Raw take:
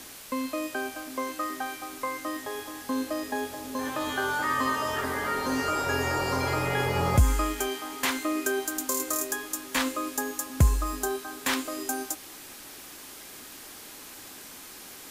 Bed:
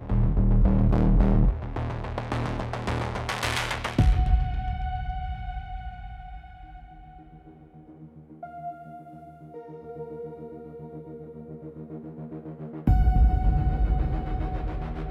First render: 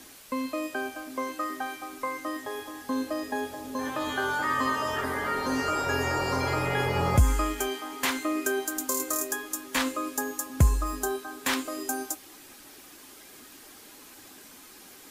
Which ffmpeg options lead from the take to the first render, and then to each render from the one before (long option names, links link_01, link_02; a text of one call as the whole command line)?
ffmpeg -i in.wav -af "afftdn=noise_reduction=6:noise_floor=-45" out.wav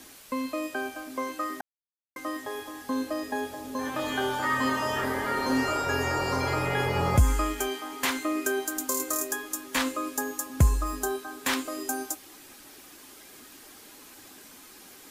ffmpeg -i in.wav -filter_complex "[0:a]asettb=1/sr,asplit=3[link_01][link_02][link_03];[link_01]atrim=end=3.914[link_04];[link_02]atrim=start=3.91:end=5.77,asetpts=PTS-STARTPTS,afade=type=in:duration=0.004:curve=qsin,afade=type=out:start_time=1.856:duration=0.004:curve=qsin,asplit=2[link_05][link_06];[link_06]adelay=31,volume=-3dB[link_07];[link_05][link_07]amix=inputs=2:normalize=0,atrim=end_sample=82026[link_08];[link_03]atrim=start=5.766[link_09];[link_04][link_08]acrossfade=duration=0.004:curve1=hsin:curve2=qsin[link_10];[link_10][link_09]acrossfade=duration=0.004:curve1=qsin:curve2=hsin,asplit=3[link_11][link_12][link_13];[link_11]atrim=end=1.61,asetpts=PTS-STARTPTS,afade=type=out:start_time=1.606:duration=0.004:curve=hsin[link_14];[link_12]atrim=start=1.61:end=2.16,asetpts=PTS-STARTPTS,volume=0[link_15];[link_13]atrim=start=2.16,asetpts=PTS-STARTPTS,afade=type=in:duration=0.004:curve=hsin[link_16];[link_14][link_15][link_16]concat=n=3:v=0:a=1" out.wav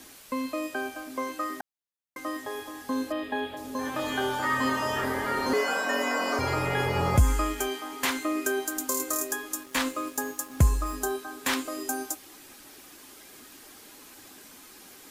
ffmpeg -i in.wav -filter_complex "[0:a]asettb=1/sr,asplit=3[link_01][link_02][link_03];[link_01]atrim=end=3.124[link_04];[link_02]atrim=start=3.12:end=3.57,asetpts=PTS-STARTPTS,afade=type=in:duration=0.004:curve=qsin,afade=type=out:start_time=0.446:duration=0.004:curve=qsin,highshelf=frequency=4400:width_type=q:width=3:gain=-10[link_05];[link_03]atrim=start=3.566[link_06];[link_04][link_05]acrossfade=duration=0.004:curve1=hsin:curve2=qsin[link_07];[link_07][link_06]acrossfade=duration=0.004:curve1=qsin:curve2=hsin,asettb=1/sr,asplit=3[link_08][link_09][link_10];[link_08]atrim=end=5.534[link_11];[link_09]atrim=start=5.53:end=6.39,asetpts=PTS-STARTPTS,afade=type=in:duration=0.004:curve=qsin,afade=type=out:start_time=0.856:duration=0.004:curve=qsin,afreqshift=160[link_12];[link_10]atrim=start=6.386[link_13];[link_11][link_12]acrossfade=duration=0.004:curve1=hsin:curve2=qsin[link_14];[link_14][link_13]acrossfade=duration=0.004:curve1=qsin:curve2=hsin,asettb=1/sr,asplit=3[link_15][link_16][link_17];[link_15]atrim=end=9.634[link_18];[link_16]atrim=start=9.63:end=10.95,asetpts=PTS-STARTPTS,afade=type=in:duration=0.004:curve=qsin,afade=type=out:start_time=1.316:duration=0.004:curve=qsin,aeval=exprs='sgn(val(0))*max(abs(val(0))-0.00355,0)':channel_layout=same[link_19];[link_17]atrim=start=10.946[link_20];[link_18][link_19]acrossfade=duration=0.004:curve1=hsin:curve2=qsin[link_21];[link_21][link_20]acrossfade=duration=0.004:curve1=qsin:curve2=hsin" out.wav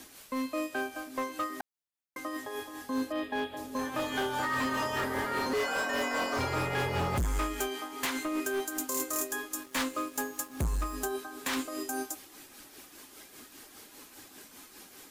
ffmpeg -i in.wav -af "tremolo=f=5:d=0.48,volume=26.5dB,asoftclip=hard,volume=-26.5dB" out.wav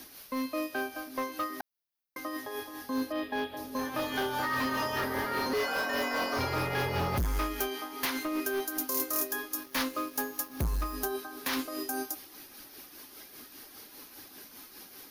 ffmpeg -i in.wav -af "aexciter=amount=1.2:drive=2.2:freq=4300" out.wav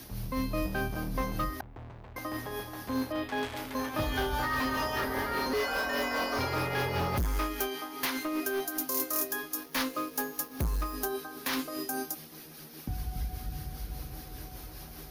ffmpeg -i in.wav -i bed.wav -filter_complex "[1:a]volume=-15.5dB[link_01];[0:a][link_01]amix=inputs=2:normalize=0" out.wav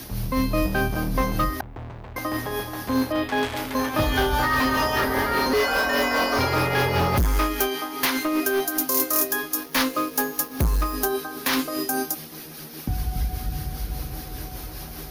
ffmpeg -i in.wav -af "volume=9dB" out.wav